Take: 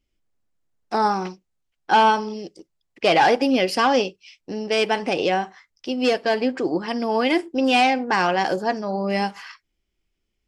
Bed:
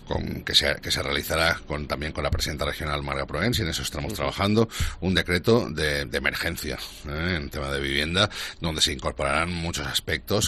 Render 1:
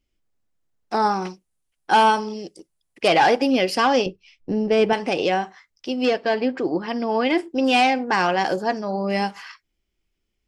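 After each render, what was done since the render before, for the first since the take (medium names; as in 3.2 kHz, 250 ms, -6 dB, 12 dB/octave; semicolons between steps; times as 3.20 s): 1.22–3.08 s: peaking EQ 9.7 kHz +14 dB 0.49 oct; 4.06–4.93 s: tilt EQ -3.5 dB/octave; 6.05–7.38 s: distance through air 96 m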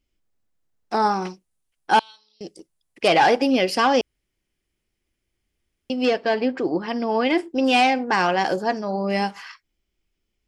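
1.99–2.41 s: band-pass filter 3.9 kHz, Q 17; 4.01–5.90 s: room tone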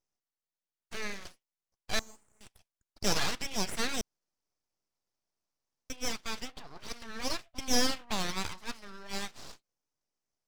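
band-pass filter 2.9 kHz, Q 1.9; full-wave rectifier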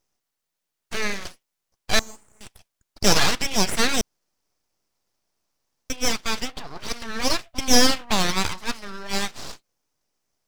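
trim +11.5 dB; peak limiter -1 dBFS, peak gain reduction 1 dB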